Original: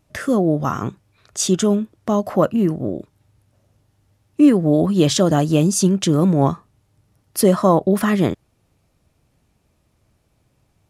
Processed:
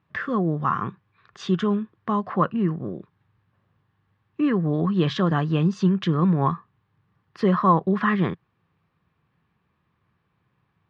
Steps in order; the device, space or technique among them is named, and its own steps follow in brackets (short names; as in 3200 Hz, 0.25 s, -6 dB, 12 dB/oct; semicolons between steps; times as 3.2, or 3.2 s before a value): guitar cabinet (speaker cabinet 100–3600 Hz, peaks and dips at 170 Hz +5 dB, 280 Hz -6 dB, 610 Hz -10 dB, 1100 Hz +10 dB, 1700 Hz +8 dB); gain -5.5 dB